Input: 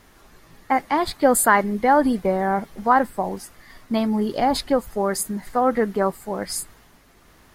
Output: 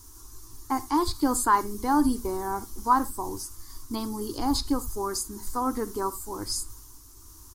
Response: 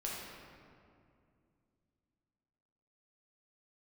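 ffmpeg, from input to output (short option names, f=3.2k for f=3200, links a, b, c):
-filter_complex "[0:a]acrossover=split=4800[a][b];[b]acompressor=threshold=-47dB:ratio=4:attack=1:release=60[c];[a][c]amix=inputs=2:normalize=0,firequalizer=gain_entry='entry(100,0);entry(160,-28);entry(300,-4);entry(590,-29);entry(980,-7);entry(1900,-25);entry(5800,5)':delay=0.05:min_phase=1,asplit=2[d][e];[1:a]atrim=start_sample=2205,atrim=end_sample=3969[f];[e][f]afir=irnorm=-1:irlink=0,volume=-10.5dB[g];[d][g]amix=inputs=2:normalize=0,volume=5dB"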